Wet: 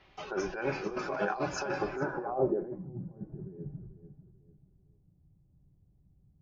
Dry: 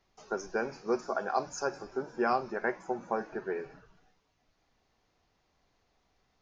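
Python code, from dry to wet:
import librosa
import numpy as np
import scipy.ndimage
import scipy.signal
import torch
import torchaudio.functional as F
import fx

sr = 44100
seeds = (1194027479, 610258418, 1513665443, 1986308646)

y = fx.over_compress(x, sr, threshold_db=-39.0, ratio=-1.0)
y = fx.notch_comb(y, sr, f0_hz=230.0)
y = fx.echo_feedback(y, sr, ms=442, feedback_pct=34, wet_db=-12)
y = fx.filter_sweep_lowpass(y, sr, from_hz=2900.0, to_hz=150.0, start_s=1.86, end_s=2.91, q=2.1)
y = F.gain(torch.from_numpy(y), 6.5).numpy()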